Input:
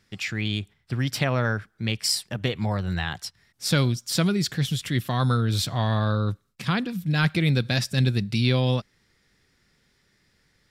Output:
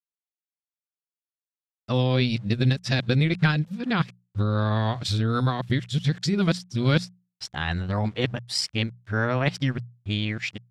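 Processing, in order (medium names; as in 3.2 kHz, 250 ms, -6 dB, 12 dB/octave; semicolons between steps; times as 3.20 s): reverse the whole clip; transient shaper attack +4 dB, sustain -9 dB; small samples zeroed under -50 dBFS; distance through air 76 m; hum notches 60/120/180 Hz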